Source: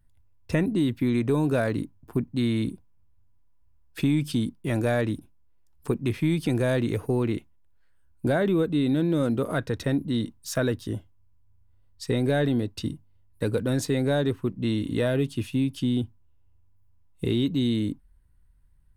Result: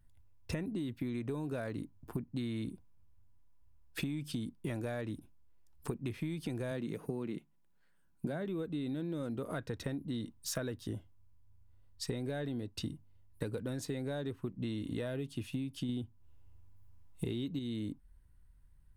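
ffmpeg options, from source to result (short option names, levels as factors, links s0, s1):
-filter_complex "[0:a]asettb=1/sr,asplit=3[s0][s1][s2];[s0]atrim=end=6.714[s3];[s1]atrim=start=6.71:end=8.45,asetpts=PTS-STARTPTS,afade=t=in:d=0.004:c=qsin,afade=t=out:st=1.736:d=0.004:c=qsin,lowshelf=f=120:t=q:w=3:g=-8.5[s4];[s2]atrim=start=8.446[s5];[s3][s4]acrossfade=d=0.004:c1=hsin:c2=qsin[s6];[s6][s5]acrossfade=d=0.004:c1=qsin:c2=hsin,asplit=3[s7][s8][s9];[s7]atrim=end=15.892[s10];[s8]atrim=start=15.888:end=17.592,asetpts=PTS-STARTPTS,volume=1.88[s11];[s9]atrim=start=17.588[s12];[s10][s11]acrossfade=d=0.004:c1=hsin:c2=hsin[s13];[s13][s12]acrossfade=d=0.004:c1=hsin:c2=hsin,acompressor=threshold=0.0224:ratio=10,volume=0.841"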